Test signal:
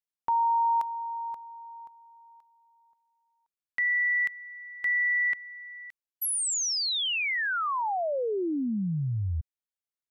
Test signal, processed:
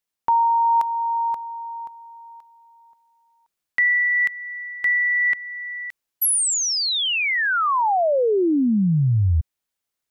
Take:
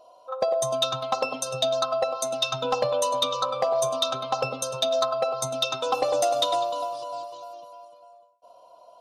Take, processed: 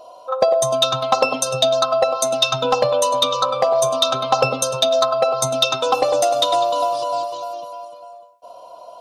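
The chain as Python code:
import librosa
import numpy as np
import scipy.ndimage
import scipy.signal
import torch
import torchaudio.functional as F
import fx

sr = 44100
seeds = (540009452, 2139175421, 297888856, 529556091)

y = fx.rider(x, sr, range_db=4, speed_s=0.5)
y = F.gain(torch.from_numpy(y), 8.0).numpy()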